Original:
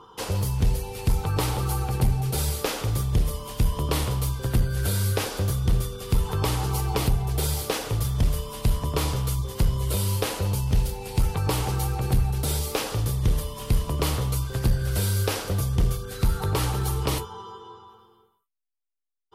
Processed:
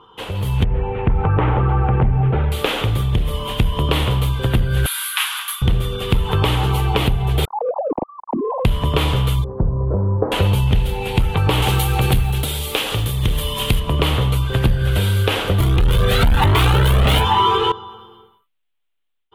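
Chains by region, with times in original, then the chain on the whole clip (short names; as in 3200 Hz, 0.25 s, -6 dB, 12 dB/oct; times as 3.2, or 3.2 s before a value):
0.64–2.52 LPF 1900 Hz 24 dB/oct + compressor 3:1, threshold -23 dBFS
4.86–5.62 steep high-pass 1000 Hz 48 dB/oct + bell 11000 Hz +13.5 dB 0.44 oct
7.45–8.65 sine-wave speech + steep low-pass 1000 Hz 72 dB/oct + compressor 8:1, threshold -31 dBFS
9.44–10.32 Gaussian blur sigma 9.7 samples + low shelf 160 Hz -7.5 dB
11.62–13.8 block floating point 7-bit + high shelf 3300 Hz +11.5 dB
15.6–17.72 sample leveller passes 5 + cascading flanger rising 1.1 Hz
whole clip: compressor, threshold -24 dBFS; resonant high shelf 4100 Hz -8.5 dB, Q 3; AGC gain up to 13 dB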